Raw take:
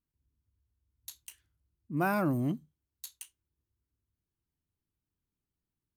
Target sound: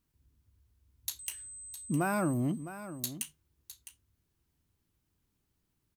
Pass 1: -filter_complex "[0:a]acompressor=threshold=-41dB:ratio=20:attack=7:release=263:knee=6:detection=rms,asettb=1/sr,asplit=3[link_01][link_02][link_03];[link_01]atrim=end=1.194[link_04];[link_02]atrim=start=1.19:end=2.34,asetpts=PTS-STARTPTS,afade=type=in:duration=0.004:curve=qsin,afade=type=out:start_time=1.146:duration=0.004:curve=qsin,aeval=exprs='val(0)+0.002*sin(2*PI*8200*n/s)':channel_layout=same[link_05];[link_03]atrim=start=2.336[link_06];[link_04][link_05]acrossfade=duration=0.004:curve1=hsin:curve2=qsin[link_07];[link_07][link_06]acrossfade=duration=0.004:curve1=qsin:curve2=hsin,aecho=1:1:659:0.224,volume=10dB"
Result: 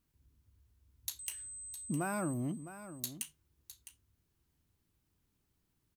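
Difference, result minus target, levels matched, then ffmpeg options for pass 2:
downward compressor: peak gain reduction +5.5 dB
-filter_complex "[0:a]acompressor=threshold=-35dB:ratio=20:attack=7:release=263:knee=6:detection=rms,asettb=1/sr,asplit=3[link_01][link_02][link_03];[link_01]atrim=end=1.194[link_04];[link_02]atrim=start=1.19:end=2.34,asetpts=PTS-STARTPTS,afade=type=in:duration=0.004:curve=qsin,afade=type=out:start_time=1.146:duration=0.004:curve=qsin,aeval=exprs='val(0)+0.002*sin(2*PI*8200*n/s)':channel_layout=same[link_05];[link_03]atrim=start=2.336[link_06];[link_04][link_05]acrossfade=duration=0.004:curve1=hsin:curve2=qsin[link_07];[link_07][link_06]acrossfade=duration=0.004:curve1=qsin:curve2=hsin,aecho=1:1:659:0.224,volume=10dB"

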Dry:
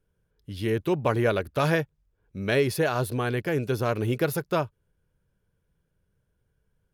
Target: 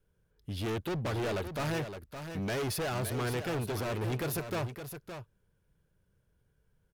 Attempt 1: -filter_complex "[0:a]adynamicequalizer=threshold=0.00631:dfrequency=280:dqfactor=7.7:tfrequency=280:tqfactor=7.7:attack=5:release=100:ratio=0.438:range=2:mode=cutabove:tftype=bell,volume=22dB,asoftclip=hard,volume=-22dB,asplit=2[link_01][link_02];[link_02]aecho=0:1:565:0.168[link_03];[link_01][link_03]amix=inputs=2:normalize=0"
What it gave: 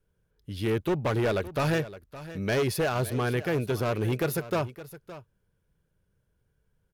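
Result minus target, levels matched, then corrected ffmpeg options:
gain into a clipping stage and back: distortion −7 dB; echo-to-direct −6.5 dB
-filter_complex "[0:a]adynamicequalizer=threshold=0.00631:dfrequency=280:dqfactor=7.7:tfrequency=280:tqfactor=7.7:attack=5:release=100:ratio=0.438:range=2:mode=cutabove:tftype=bell,volume=31.5dB,asoftclip=hard,volume=-31.5dB,asplit=2[link_01][link_02];[link_02]aecho=0:1:565:0.355[link_03];[link_01][link_03]amix=inputs=2:normalize=0"

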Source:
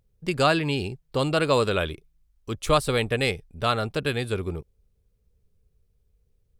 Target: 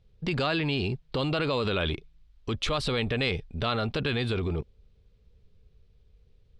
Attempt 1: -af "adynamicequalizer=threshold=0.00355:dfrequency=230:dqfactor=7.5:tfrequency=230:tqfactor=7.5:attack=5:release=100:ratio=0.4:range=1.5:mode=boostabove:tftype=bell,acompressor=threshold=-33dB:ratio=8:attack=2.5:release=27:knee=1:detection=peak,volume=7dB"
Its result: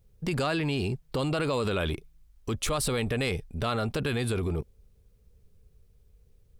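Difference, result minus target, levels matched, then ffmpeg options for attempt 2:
4,000 Hz band −3.5 dB
-af "adynamicequalizer=threshold=0.00355:dfrequency=230:dqfactor=7.5:tfrequency=230:tqfactor=7.5:attack=5:release=100:ratio=0.4:range=1.5:mode=boostabove:tftype=bell,acompressor=threshold=-33dB:ratio=8:attack=2.5:release=27:knee=1:detection=peak,lowpass=frequency=3800:width_type=q:width=1.7,volume=7dB"

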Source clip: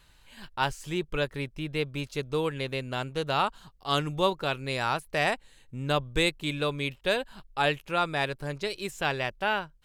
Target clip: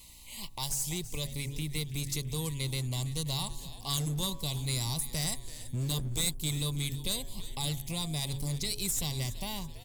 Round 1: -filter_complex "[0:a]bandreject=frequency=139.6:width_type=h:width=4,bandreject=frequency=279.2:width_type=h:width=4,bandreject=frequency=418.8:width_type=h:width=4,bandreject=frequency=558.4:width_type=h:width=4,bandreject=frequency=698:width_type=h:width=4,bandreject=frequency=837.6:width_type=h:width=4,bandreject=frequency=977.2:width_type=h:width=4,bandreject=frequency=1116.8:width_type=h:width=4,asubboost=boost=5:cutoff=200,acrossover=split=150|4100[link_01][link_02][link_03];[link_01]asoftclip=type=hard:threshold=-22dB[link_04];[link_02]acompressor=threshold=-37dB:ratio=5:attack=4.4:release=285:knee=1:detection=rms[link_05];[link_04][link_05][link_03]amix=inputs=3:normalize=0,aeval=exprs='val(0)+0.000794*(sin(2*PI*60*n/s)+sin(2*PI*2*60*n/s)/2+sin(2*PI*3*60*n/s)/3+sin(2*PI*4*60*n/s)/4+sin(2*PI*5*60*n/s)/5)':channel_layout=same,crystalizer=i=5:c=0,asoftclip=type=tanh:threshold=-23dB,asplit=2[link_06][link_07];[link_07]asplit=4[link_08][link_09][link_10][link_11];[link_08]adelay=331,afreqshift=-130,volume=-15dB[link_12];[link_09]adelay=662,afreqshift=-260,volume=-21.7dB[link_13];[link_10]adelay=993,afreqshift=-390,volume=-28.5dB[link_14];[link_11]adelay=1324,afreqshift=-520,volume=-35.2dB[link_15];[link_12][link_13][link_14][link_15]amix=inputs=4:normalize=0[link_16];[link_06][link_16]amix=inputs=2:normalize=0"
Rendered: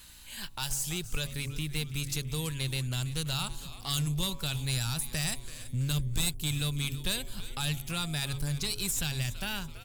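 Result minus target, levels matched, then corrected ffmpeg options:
2,000 Hz band +5.5 dB; hard clipping: distortion −5 dB
-filter_complex "[0:a]bandreject=frequency=139.6:width_type=h:width=4,bandreject=frequency=279.2:width_type=h:width=4,bandreject=frequency=418.8:width_type=h:width=4,bandreject=frequency=558.4:width_type=h:width=4,bandreject=frequency=698:width_type=h:width=4,bandreject=frequency=837.6:width_type=h:width=4,bandreject=frequency=977.2:width_type=h:width=4,bandreject=frequency=1116.8:width_type=h:width=4,asubboost=boost=5:cutoff=200,acrossover=split=150|4100[link_01][link_02][link_03];[link_01]asoftclip=type=hard:threshold=-32.5dB[link_04];[link_02]acompressor=threshold=-37dB:ratio=5:attack=4.4:release=285:knee=1:detection=rms,asuperstop=centerf=1500:order=20:qfactor=2[link_05];[link_04][link_05][link_03]amix=inputs=3:normalize=0,aeval=exprs='val(0)+0.000794*(sin(2*PI*60*n/s)+sin(2*PI*2*60*n/s)/2+sin(2*PI*3*60*n/s)/3+sin(2*PI*4*60*n/s)/4+sin(2*PI*5*60*n/s)/5)':channel_layout=same,crystalizer=i=5:c=0,asoftclip=type=tanh:threshold=-23dB,asplit=2[link_06][link_07];[link_07]asplit=4[link_08][link_09][link_10][link_11];[link_08]adelay=331,afreqshift=-130,volume=-15dB[link_12];[link_09]adelay=662,afreqshift=-260,volume=-21.7dB[link_13];[link_10]adelay=993,afreqshift=-390,volume=-28.5dB[link_14];[link_11]adelay=1324,afreqshift=-520,volume=-35.2dB[link_15];[link_12][link_13][link_14][link_15]amix=inputs=4:normalize=0[link_16];[link_06][link_16]amix=inputs=2:normalize=0"

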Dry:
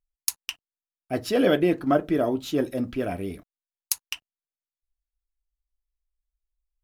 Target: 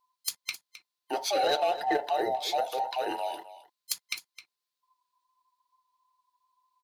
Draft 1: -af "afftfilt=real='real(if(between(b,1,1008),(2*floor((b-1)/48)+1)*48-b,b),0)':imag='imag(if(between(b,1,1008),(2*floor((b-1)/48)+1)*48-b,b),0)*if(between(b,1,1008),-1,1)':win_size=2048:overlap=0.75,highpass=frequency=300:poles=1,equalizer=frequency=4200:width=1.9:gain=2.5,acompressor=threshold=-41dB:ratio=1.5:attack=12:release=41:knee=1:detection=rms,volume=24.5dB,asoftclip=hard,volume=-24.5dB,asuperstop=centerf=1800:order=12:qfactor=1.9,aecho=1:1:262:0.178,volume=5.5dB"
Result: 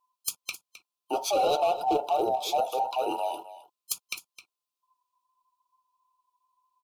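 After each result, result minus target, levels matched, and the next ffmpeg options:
2,000 Hz band −6.5 dB; 4,000 Hz band −4.0 dB; downward compressor: peak gain reduction −3.5 dB
-af "afftfilt=real='real(if(between(b,1,1008),(2*floor((b-1)/48)+1)*48-b,b),0)':imag='imag(if(between(b,1,1008),(2*floor((b-1)/48)+1)*48-b,b),0)*if(between(b,1,1008),-1,1)':win_size=2048:overlap=0.75,highpass=frequency=300:poles=1,equalizer=frequency=4200:width=1.9:gain=2.5,acompressor=threshold=-41dB:ratio=1.5:attack=12:release=41:knee=1:detection=rms,volume=24.5dB,asoftclip=hard,volume=-24.5dB,aecho=1:1:262:0.178,volume=5.5dB"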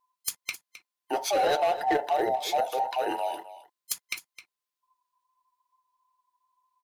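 4,000 Hz band −4.0 dB; downward compressor: peak gain reduction −3.5 dB
-af "afftfilt=real='real(if(between(b,1,1008),(2*floor((b-1)/48)+1)*48-b,b),0)':imag='imag(if(between(b,1,1008),(2*floor((b-1)/48)+1)*48-b,b),0)*if(between(b,1,1008),-1,1)':win_size=2048:overlap=0.75,highpass=frequency=300:poles=1,equalizer=frequency=4200:width=1.9:gain=10,acompressor=threshold=-41dB:ratio=1.5:attack=12:release=41:knee=1:detection=rms,volume=24.5dB,asoftclip=hard,volume=-24.5dB,aecho=1:1:262:0.178,volume=5.5dB"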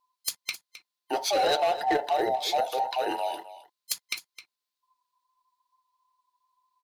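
downward compressor: peak gain reduction −3 dB
-af "afftfilt=real='real(if(between(b,1,1008),(2*floor((b-1)/48)+1)*48-b,b),0)':imag='imag(if(between(b,1,1008),(2*floor((b-1)/48)+1)*48-b,b),0)*if(between(b,1,1008),-1,1)':win_size=2048:overlap=0.75,highpass=frequency=300:poles=1,equalizer=frequency=4200:width=1.9:gain=10,acompressor=threshold=-49.5dB:ratio=1.5:attack=12:release=41:knee=1:detection=rms,volume=24.5dB,asoftclip=hard,volume=-24.5dB,aecho=1:1:262:0.178,volume=5.5dB"

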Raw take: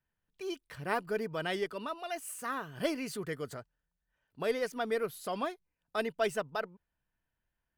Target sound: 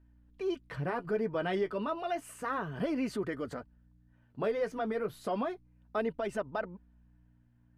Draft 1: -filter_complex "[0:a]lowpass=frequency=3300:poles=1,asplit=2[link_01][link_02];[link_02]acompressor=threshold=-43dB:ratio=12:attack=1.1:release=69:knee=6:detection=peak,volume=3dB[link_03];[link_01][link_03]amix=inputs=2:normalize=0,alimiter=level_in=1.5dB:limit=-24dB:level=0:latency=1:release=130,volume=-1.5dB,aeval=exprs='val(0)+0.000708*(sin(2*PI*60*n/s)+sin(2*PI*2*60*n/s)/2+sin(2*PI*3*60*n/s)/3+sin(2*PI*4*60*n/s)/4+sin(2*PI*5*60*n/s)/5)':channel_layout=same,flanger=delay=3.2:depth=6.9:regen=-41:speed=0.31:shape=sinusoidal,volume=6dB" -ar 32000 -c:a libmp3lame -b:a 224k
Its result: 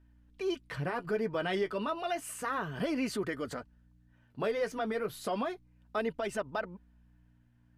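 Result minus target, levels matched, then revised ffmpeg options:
4,000 Hz band +5.0 dB
-filter_complex "[0:a]lowpass=frequency=1200:poles=1,asplit=2[link_01][link_02];[link_02]acompressor=threshold=-43dB:ratio=12:attack=1.1:release=69:knee=6:detection=peak,volume=3dB[link_03];[link_01][link_03]amix=inputs=2:normalize=0,alimiter=level_in=1.5dB:limit=-24dB:level=0:latency=1:release=130,volume=-1.5dB,aeval=exprs='val(0)+0.000708*(sin(2*PI*60*n/s)+sin(2*PI*2*60*n/s)/2+sin(2*PI*3*60*n/s)/3+sin(2*PI*4*60*n/s)/4+sin(2*PI*5*60*n/s)/5)':channel_layout=same,flanger=delay=3.2:depth=6.9:regen=-41:speed=0.31:shape=sinusoidal,volume=6dB" -ar 32000 -c:a libmp3lame -b:a 224k

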